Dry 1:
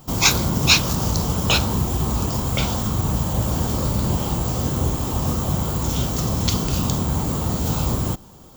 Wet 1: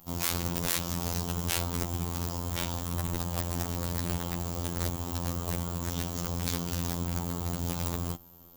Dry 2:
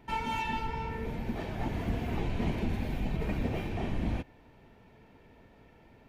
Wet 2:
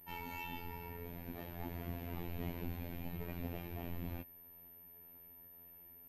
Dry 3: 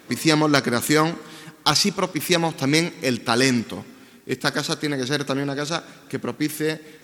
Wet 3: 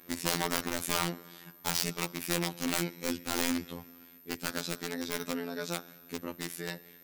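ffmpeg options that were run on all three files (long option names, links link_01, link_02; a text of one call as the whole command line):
ffmpeg -i in.wav -af "aeval=exprs='(mod(4.22*val(0)+1,2)-1)/4.22':channel_layout=same,aeval=exprs='val(0)+0.00447*sin(2*PI*13000*n/s)':channel_layout=same,afftfilt=real='hypot(re,im)*cos(PI*b)':imag='0':win_size=2048:overlap=0.75,volume=-7.5dB" out.wav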